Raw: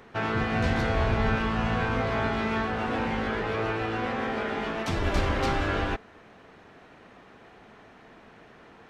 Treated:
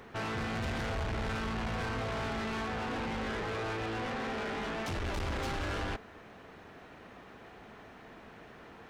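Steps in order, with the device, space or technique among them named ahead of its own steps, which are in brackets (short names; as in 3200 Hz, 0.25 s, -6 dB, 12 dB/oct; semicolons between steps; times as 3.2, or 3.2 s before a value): open-reel tape (soft clip -33.5 dBFS, distortion -6 dB; bell 64 Hz +3.5 dB 1.05 oct; white noise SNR 46 dB)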